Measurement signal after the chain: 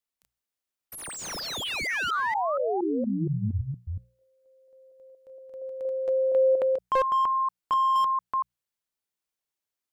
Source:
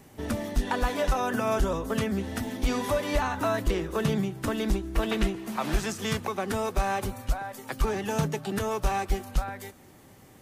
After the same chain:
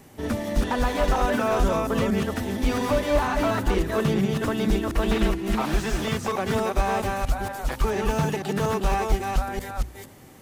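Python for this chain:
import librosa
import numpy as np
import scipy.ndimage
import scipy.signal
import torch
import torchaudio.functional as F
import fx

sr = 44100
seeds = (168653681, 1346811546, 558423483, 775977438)

y = fx.reverse_delay(x, sr, ms=234, wet_db=-3.0)
y = fx.hum_notches(y, sr, base_hz=60, count=3)
y = fx.slew_limit(y, sr, full_power_hz=67.0)
y = y * 10.0 ** (3.0 / 20.0)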